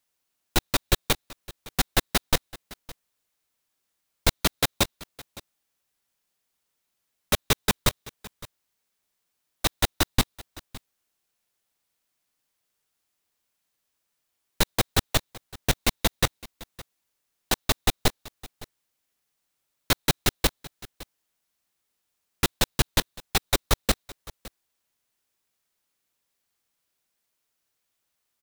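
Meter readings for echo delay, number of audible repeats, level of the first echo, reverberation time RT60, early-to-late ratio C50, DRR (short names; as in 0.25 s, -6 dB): 0.562 s, 1, -20.0 dB, none, none, none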